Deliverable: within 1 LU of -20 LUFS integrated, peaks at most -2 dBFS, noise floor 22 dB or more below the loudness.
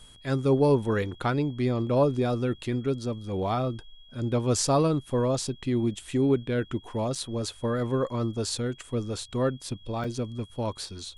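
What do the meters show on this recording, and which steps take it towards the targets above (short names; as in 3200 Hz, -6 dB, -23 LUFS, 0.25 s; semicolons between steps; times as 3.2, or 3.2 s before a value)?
dropouts 2; longest dropout 4.6 ms; steady tone 3300 Hz; tone level -53 dBFS; loudness -28.0 LUFS; peak -12.0 dBFS; loudness target -20.0 LUFS
-> interpolate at 7.15/10.04, 4.6 ms; notch 3300 Hz, Q 30; gain +8 dB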